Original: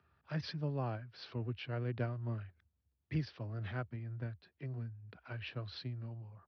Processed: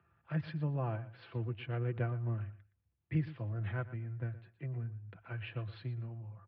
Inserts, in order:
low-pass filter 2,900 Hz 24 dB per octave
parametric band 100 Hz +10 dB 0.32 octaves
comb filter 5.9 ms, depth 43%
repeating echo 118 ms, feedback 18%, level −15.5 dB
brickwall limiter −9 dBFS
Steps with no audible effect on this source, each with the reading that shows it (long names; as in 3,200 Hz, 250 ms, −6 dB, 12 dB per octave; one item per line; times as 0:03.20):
brickwall limiter −9 dBFS: peak of its input −23.0 dBFS